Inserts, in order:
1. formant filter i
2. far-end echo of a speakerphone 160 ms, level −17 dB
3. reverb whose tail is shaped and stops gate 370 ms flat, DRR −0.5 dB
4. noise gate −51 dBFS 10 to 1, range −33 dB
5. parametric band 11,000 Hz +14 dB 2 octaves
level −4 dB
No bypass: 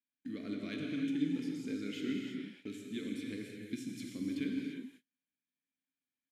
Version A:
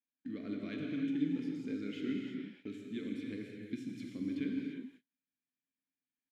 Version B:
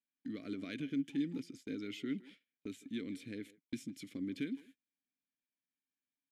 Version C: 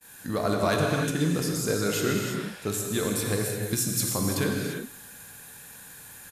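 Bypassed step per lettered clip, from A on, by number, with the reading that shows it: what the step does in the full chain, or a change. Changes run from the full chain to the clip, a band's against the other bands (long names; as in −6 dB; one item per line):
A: 5, 4 kHz band −5.0 dB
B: 3, change in integrated loudness −3.0 LU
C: 1, 250 Hz band −12.5 dB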